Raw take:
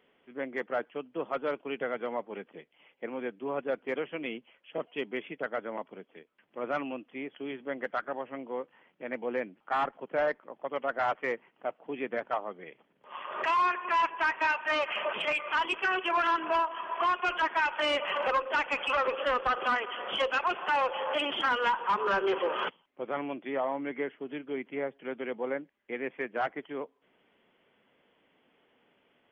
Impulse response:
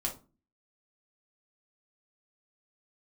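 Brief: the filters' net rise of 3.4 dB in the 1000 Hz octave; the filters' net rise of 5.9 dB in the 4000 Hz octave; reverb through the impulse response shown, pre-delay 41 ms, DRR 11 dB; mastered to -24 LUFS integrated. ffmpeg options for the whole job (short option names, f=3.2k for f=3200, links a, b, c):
-filter_complex "[0:a]equalizer=f=1k:t=o:g=3.5,equalizer=f=4k:t=o:g=9,asplit=2[a][b];[1:a]atrim=start_sample=2205,adelay=41[c];[b][c]afir=irnorm=-1:irlink=0,volume=-14dB[d];[a][d]amix=inputs=2:normalize=0,volume=4dB"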